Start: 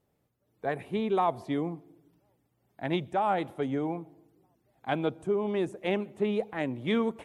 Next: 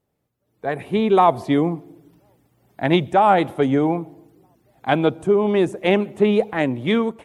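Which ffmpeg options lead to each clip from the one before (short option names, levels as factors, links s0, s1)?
-af "dynaudnorm=f=310:g=5:m=4.73"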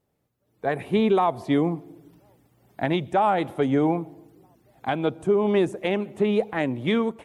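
-af "alimiter=limit=0.251:level=0:latency=1:release=481"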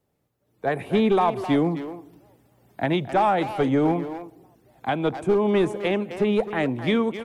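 -filter_complex "[0:a]asplit=2[s0][s1];[s1]adelay=260,highpass=300,lowpass=3400,asoftclip=type=hard:threshold=0.0891,volume=0.355[s2];[s0][s2]amix=inputs=2:normalize=0,acrossover=split=250|880[s3][s4][s5];[s4]aeval=exprs='clip(val(0),-1,0.0841)':c=same[s6];[s3][s6][s5]amix=inputs=3:normalize=0,volume=1.12"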